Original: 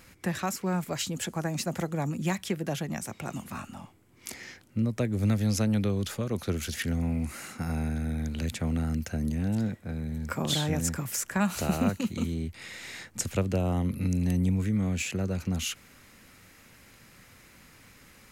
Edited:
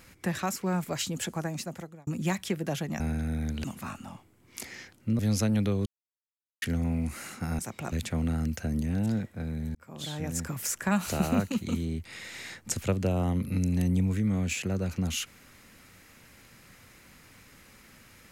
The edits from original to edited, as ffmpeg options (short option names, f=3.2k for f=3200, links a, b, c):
-filter_complex "[0:a]asplit=10[a][b][c][d][e][f][g][h][i][j];[a]atrim=end=2.07,asetpts=PTS-STARTPTS,afade=t=out:st=1.3:d=0.77[k];[b]atrim=start=2.07:end=3.002,asetpts=PTS-STARTPTS,afade=t=in:d=0.004:c=hsin[l];[c]atrim=start=7.768:end=8.412[m];[d]atrim=start=3.328:end=4.882[n];[e]atrim=start=5.368:end=6.04,asetpts=PTS-STARTPTS,afade=t=out:st=0.668:d=0.004:c=hsin[o];[f]atrim=start=6.04:end=6.8,asetpts=PTS-STARTPTS,volume=0[p];[g]atrim=start=6.8:end=7.772,asetpts=PTS-STARTPTS,afade=t=in:d=0.004:c=hsin[q];[h]atrim=start=2.998:end=3.332[r];[i]atrim=start=8.408:end=10.24,asetpts=PTS-STARTPTS,afade=t=out:st=1.828:d=0.004:c=hsin[s];[j]atrim=start=10.24,asetpts=PTS-STARTPTS,afade=t=in:d=0.93[t];[k][l]concat=n=2:v=0:a=1[u];[u][m]acrossfade=d=0.004:c1=hsin:c2=hsin[v];[v][n]acrossfade=d=0.004:c1=hsin:c2=hsin[w];[o][p][q]concat=n=3:v=0:a=1[x];[w][x]acrossfade=d=0.004:c1=hsin:c2=hsin[y];[y][r]acrossfade=d=0.004:c1=hsin:c2=hsin[z];[s][t]concat=n=2:v=0:a=1[aa];[z][aa]acrossfade=d=0.004:c1=hsin:c2=hsin"